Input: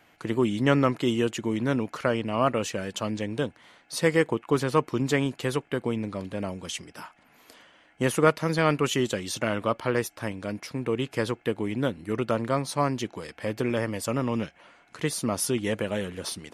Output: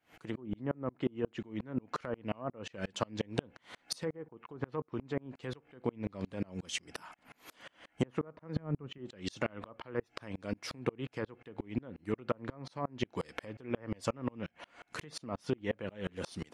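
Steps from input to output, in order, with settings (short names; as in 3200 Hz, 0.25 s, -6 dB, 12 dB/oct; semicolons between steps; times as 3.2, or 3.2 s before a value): treble ducked by the level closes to 970 Hz, closed at -19 dBFS; 8.56–8.98 tone controls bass +9 dB, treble -4 dB; compressor 12:1, threshold -34 dBFS, peak gain reduction 19 dB; on a send at -23 dB: reverb RT60 0.35 s, pre-delay 3 ms; on the sum: dB-ramp tremolo swelling 5.6 Hz, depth 34 dB; gain +9.5 dB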